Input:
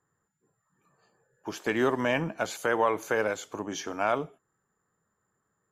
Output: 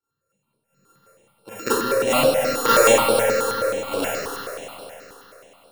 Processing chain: sample sorter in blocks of 32 samples; bell 530 Hz +15 dB 0.21 oct; transient shaper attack +6 dB, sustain +2 dB; step gate "..x..xxxxx..x." 116 bpm -12 dB; on a send: multi-head echo 99 ms, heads all three, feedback 67%, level -12 dB; on the sum: Schroeder reverb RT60 0.73 s, combs from 28 ms, DRR -9.5 dB; step phaser 9.4 Hz 610–6500 Hz

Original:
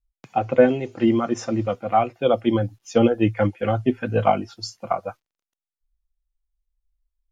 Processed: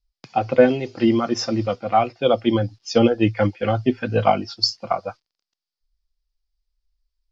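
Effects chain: synth low-pass 4900 Hz, resonance Q 5.7; gain +1 dB

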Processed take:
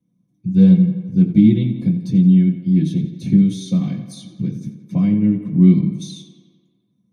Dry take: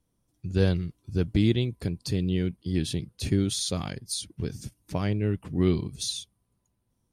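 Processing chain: tape echo 87 ms, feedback 72%, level -10 dB, low-pass 4400 Hz; reverb RT60 0.15 s, pre-delay 3 ms, DRR -3.5 dB; gain -12.5 dB

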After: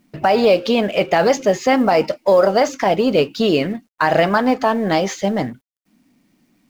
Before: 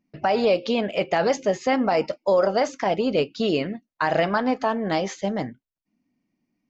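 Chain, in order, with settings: G.711 law mismatch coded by mu; gain +6 dB

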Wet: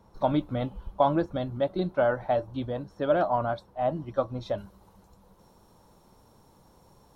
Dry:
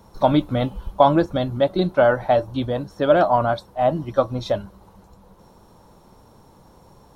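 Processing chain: high shelf 3900 Hz -7.5 dB, from 4.58 s +4.5 dB; gain -8 dB

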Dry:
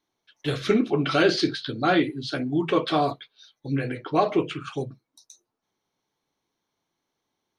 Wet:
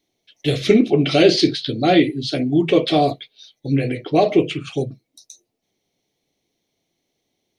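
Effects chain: band shelf 1200 Hz -14 dB 1.1 oct; gain +7.5 dB

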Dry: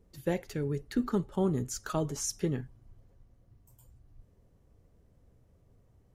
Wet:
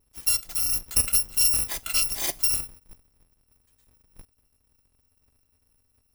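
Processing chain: FFT order left unsorted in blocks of 256 samples; gate -52 dBFS, range -12 dB; gain +7 dB

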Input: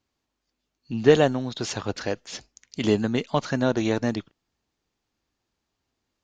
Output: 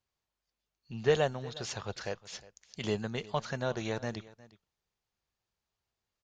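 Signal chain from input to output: bell 280 Hz -14 dB 0.53 oct; echo 0.359 s -20 dB; gain -7.5 dB

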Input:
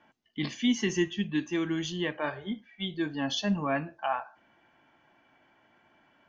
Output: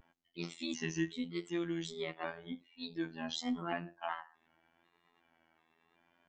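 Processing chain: trilling pitch shifter +3 st, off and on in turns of 0.372 s; robotiser 83.6 Hz; vibrato 0.85 Hz 52 cents; gain -6 dB

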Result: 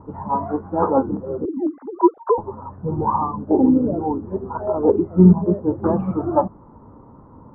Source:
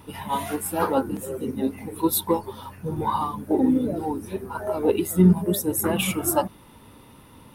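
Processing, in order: 1.45–2.38 sine-wave speech; steep low-pass 1200 Hz 36 dB/oct; gain +5 dB

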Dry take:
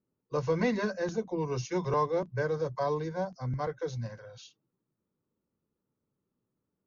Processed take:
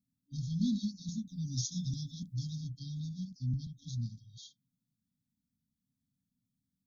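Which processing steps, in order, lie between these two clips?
1.27–2.6 high shelf 3300 Hz +9 dB; FFT band-reject 290–3200 Hz

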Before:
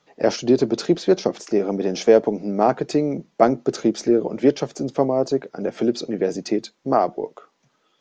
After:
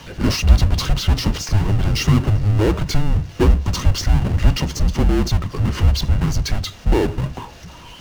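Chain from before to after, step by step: power-law curve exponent 0.5; small resonant body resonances 240/3100 Hz, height 11 dB, ringing for 40 ms; frequency shift -310 Hz; gain -6.5 dB

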